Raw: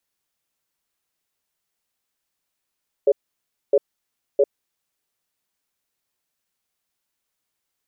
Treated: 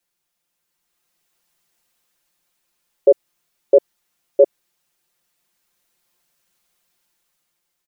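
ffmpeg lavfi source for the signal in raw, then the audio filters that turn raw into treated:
-f lavfi -i "aevalsrc='0.188*(sin(2*PI*416*t)+sin(2*PI*562*t))*clip(min(mod(t,0.66),0.05-mod(t,0.66))/0.005,0,1)':d=1.71:s=44100"
-af "aecho=1:1:5.7:0.86,dynaudnorm=f=290:g=7:m=2.51"

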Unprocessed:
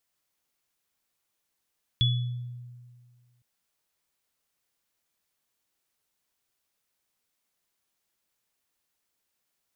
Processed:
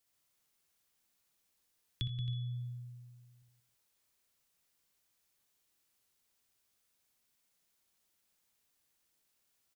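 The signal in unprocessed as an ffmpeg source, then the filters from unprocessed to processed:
-f lavfi -i "aevalsrc='0.1*pow(10,-3*t/1.84)*sin(2*PI*122*t)+0.0891*pow(10,-3*t/0.53)*sin(2*PI*3410*t)':d=1.41:s=44100"
-filter_complex "[0:a]equalizer=f=930:w=0.34:g=-3.5,asplit=2[s0][s1];[s1]aecho=0:1:62|82|178|269|322:0.668|0.224|0.398|0.282|0.106[s2];[s0][s2]amix=inputs=2:normalize=0,acrossover=split=130|3000[s3][s4][s5];[s3]acompressor=threshold=0.00794:ratio=4[s6];[s4]acompressor=threshold=0.00794:ratio=4[s7];[s5]acompressor=threshold=0.00112:ratio=4[s8];[s6][s7][s8]amix=inputs=3:normalize=0"

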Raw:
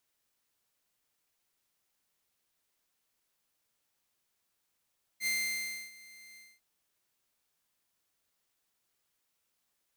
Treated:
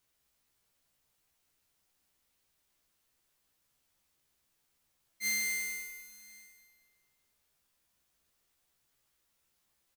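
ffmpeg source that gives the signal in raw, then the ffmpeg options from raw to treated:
-f lavfi -i "aevalsrc='0.0501*(2*mod(2090*t,1)-1)':d=1.401:s=44100,afade=t=in:d=0.064,afade=t=out:st=0.064:d=0.645:silence=0.075,afade=t=out:st=1.17:d=0.231"
-filter_complex "[0:a]lowshelf=f=130:g=9.5,asplit=2[s0][s1];[s1]adelay=15,volume=0.708[s2];[s0][s2]amix=inputs=2:normalize=0,asplit=2[s3][s4];[s4]aecho=0:1:198|396|594|792|990:0.398|0.159|0.0637|0.0255|0.0102[s5];[s3][s5]amix=inputs=2:normalize=0"

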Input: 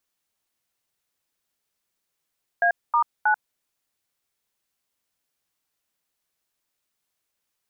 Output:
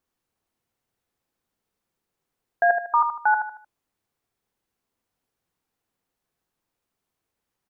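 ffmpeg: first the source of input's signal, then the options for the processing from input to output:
-f lavfi -i "aevalsrc='0.112*clip(min(mod(t,0.317),0.089-mod(t,0.317))/0.002,0,1)*(eq(floor(t/0.317),0)*(sin(2*PI*697*mod(t,0.317))+sin(2*PI*1633*mod(t,0.317)))+eq(floor(t/0.317),1)*(sin(2*PI*941*mod(t,0.317))+sin(2*PI*1209*mod(t,0.317)))+eq(floor(t/0.317),2)*(sin(2*PI*852*mod(t,0.317))+sin(2*PI*1477*mod(t,0.317))))':d=0.951:s=44100"
-filter_complex "[0:a]tiltshelf=f=1400:g=7,bandreject=f=600:w=12,asplit=2[s0][s1];[s1]aecho=0:1:76|152|228|304:0.447|0.161|0.0579|0.0208[s2];[s0][s2]amix=inputs=2:normalize=0"

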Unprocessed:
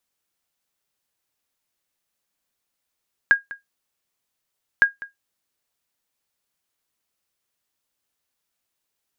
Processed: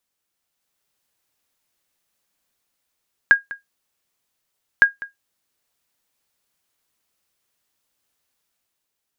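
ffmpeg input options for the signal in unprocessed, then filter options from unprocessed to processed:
-f lavfi -i "aevalsrc='0.531*(sin(2*PI*1630*mod(t,1.51))*exp(-6.91*mod(t,1.51)/0.15)+0.106*sin(2*PI*1630*max(mod(t,1.51)-0.2,0))*exp(-6.91*max(mod(t,1.51)-0.2,0)/0.15))':d=3.02:s=44100"
-af "dynaudnorm=f=100:g=13:m=1.78"

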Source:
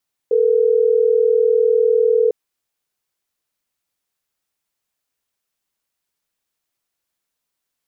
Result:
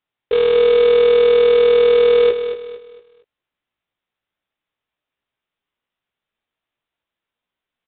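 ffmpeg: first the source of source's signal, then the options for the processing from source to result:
-f lavfi -i "aevalsrc='0.188*(sin(2*PI*440*t)+sin(2*PI*480*t))*clip(min(mod(t,6),2-mod(t,6))/0.005,0,1)':d=3.12:s=44100"
-filter_complex "[0:a]aresample=8000,acrusher=bits=3:mode=log:mix=0:aa=0.000001,aresample=44100,asplit=2[s0][s1];[s1]adelay=17,volume=0.501[s2];[s0][s2]amix=inputs=2:normalize=0,aecho=1:1:229|458|687|916:0.316|0.111|0.0387|0.0136"

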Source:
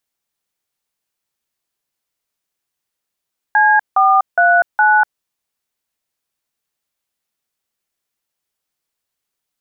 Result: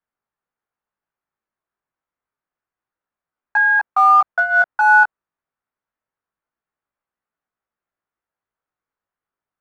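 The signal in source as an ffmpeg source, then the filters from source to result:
-f lavfi -i "aevalsrc='0.282*clip(min(mod(t,0.413),0.245-mod(t,0.413))/0.002,0,1)*(eq(floor(t/0.413),0)*(sin(2*PI*852*mod(t,0.413))+sin(2*PI*1633*mod(t,0.413)))+eq(floor(t/0.413),1)*(sin(2*PI*770*mod(t,0.413))+sin(2*PI*1209*mod(t,0.413)))+eq(floor(t/0.413),2)*(sin(2*PI*697*mod(t,0.413))+sin(2*PI*1477*mod(t,0.413)))+eq(floor(t/0.413),3)*(sin(2*PI*852*mod(t,0.413))+sin(2*PI*1477*mod(t,0.413))))':d=1.652:s=44100"
-filter_complex "[0:a]lowpass=f=1400:t=q:w=1.6,flanger=delay=17:depth=2.5:speed=0.27,acrossover=split=710|780|940[s0][s1][s2][s3];[s0]volume=53.1,asoftclip=hard,volume=0.0188[s4];[s4][s1][s2][s3]amix=inputs=4:normalize=0"

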